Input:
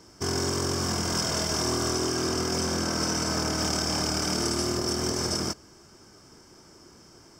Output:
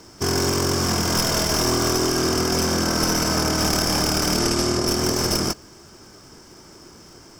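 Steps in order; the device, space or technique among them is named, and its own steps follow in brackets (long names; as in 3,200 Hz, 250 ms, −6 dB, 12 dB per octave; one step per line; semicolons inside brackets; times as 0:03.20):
record under a worn stylus (stylus tracing distortion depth 0.044 ms; surface crackle; pink noise bed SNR 37 dB)
0:04.39–0:04.87: low-pass filter 11,000 Hz 12 dB per octave
level +6.5 dB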